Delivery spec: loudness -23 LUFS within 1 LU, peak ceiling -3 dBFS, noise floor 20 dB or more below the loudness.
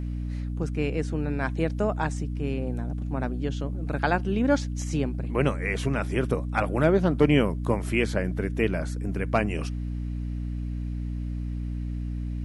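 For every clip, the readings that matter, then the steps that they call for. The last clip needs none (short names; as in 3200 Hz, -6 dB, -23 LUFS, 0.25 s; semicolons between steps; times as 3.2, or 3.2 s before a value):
hum 60 Hz; harmonics up to 300 Hz; hum level -28 dBFS; loudness -27.5 LUFS; peak -8.5 dBFS; loudness target -23.0 LUFS
-> notches 60/120/180/240/300 Hz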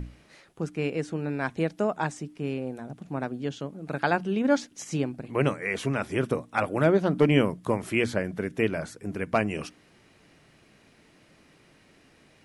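hum none; loudness -28.0 LUFS; peak -8.5 dBFS; loudness target -23.0 LUFS
-> gain +5 dB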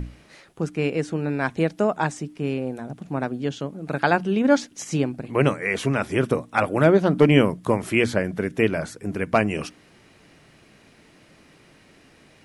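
loudness -23.0 LUFS; peak -3.5 dBFS; noise floor -54 dBFS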